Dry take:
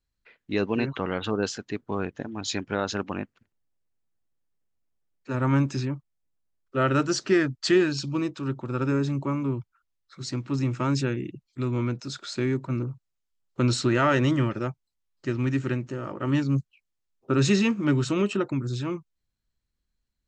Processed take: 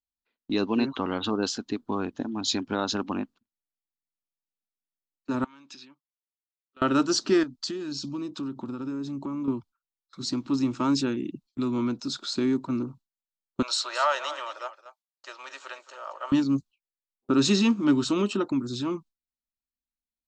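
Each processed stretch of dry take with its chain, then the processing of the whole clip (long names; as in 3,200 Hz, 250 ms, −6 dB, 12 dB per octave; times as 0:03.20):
0:05.44–0:06.82: downward compressor 12 to 1, threshold −32 dBFS + resonant band-pass 3,000 Hz, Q 1.1
0:07.43–0:09.48: dynamic equaliser 6,200 Hz, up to +6 dB, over −45 dBFS, Q 1.4 + downward compressor 8 to 1, threshold −33 dBFS
0:13.62–0:16.32: elliptic high-pass filter 570 Hz, stop band 60 dB + single-tap delay 222 ms −12.5 dB
whole clip: octave-band graphic EQ 125/250/500/1,000/2,000/4,000 Hz −8/+11/−5/+5/−9/+7 dB; noise gate with hold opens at −39 dBFS; dynamic equaliser 170 Hz, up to −6 dB, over −31 dBFS, Q 0.74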